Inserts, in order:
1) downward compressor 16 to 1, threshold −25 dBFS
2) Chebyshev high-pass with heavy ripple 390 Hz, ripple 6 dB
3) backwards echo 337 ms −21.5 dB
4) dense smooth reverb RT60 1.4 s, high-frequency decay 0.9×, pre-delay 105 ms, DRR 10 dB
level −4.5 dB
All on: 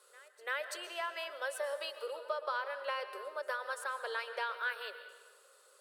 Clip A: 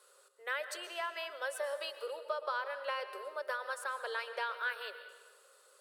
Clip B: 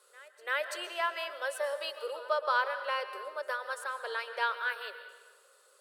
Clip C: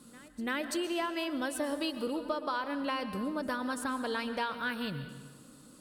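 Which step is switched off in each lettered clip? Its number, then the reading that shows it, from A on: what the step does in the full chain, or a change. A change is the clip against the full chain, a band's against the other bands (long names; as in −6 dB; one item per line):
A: 3, change in momentary loudness spread −2 LU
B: 1, average gain reduction 2.0 dB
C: 2, 2 kHz band −3.5 dB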